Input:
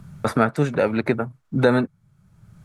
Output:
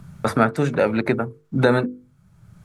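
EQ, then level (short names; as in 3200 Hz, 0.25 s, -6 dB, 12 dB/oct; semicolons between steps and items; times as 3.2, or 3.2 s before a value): notches 50/100/150/200/250/300/350/400/450/500 Hz; +1.5 dB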